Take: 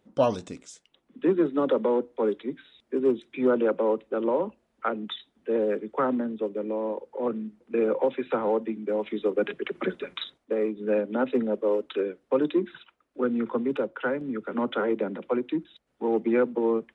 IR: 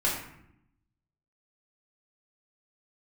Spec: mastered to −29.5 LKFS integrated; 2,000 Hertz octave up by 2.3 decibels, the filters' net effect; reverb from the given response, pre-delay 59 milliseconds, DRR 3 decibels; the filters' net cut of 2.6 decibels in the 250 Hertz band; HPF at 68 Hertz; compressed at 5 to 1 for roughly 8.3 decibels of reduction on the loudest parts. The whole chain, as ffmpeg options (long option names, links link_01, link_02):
-filter_complex "[0:a]highpass=68,equalizer=frequency=250:width_type=o:gain=-3.5,equalizer=frequency=2000:width_type=o:gain=3.5,acompressor=threshold=-28dB:ratio=5,asplit=2[link_01][link_02];[1:a]atrim=start_sample=2205,adelay=59[link_03];[link_02][link_03]afir=irnorm=-1:irlink=0,volume=-13dB[link_04];[link_01][link_04]amix=inputs=2:normalize=0,volume=2.5dB"